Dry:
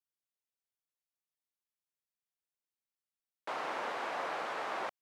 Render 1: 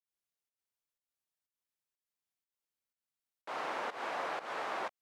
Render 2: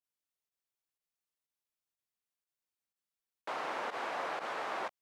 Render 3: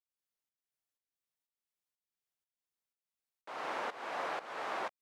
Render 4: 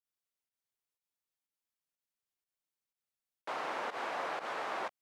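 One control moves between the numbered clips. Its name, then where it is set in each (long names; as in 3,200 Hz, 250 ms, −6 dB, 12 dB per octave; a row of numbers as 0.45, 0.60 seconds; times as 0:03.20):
fake sidechain pumping, release: 206, 68, 411, 101 milliseconds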